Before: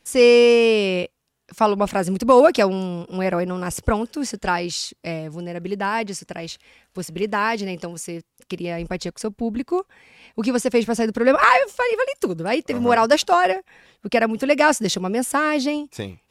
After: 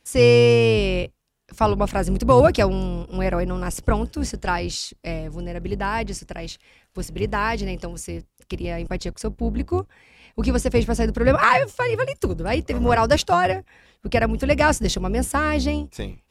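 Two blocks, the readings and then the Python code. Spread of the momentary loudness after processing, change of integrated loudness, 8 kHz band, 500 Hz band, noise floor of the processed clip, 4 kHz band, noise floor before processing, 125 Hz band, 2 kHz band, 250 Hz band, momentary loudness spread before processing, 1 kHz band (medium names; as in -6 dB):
18 LU, -1.5 dB, -2.0 dB, -2.0 dB, -65 dBFS, -2.0 dB, -69 dBFS, +8.0 dB, -2.0 dB, -1.5 dB, 18 LU, -2.0 dB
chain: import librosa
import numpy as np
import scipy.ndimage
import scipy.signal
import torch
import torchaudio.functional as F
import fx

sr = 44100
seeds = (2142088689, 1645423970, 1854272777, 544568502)

y = fx.octave_divider(x, sr, octaves=2, level_db=2.0)
y = y * librosa.db_to_amplitude(-2.0)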